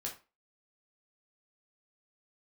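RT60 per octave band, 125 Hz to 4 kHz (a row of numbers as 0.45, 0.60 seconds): 0.30, 0.30, 0.30, 0.30, 0.30, 0.25 seconds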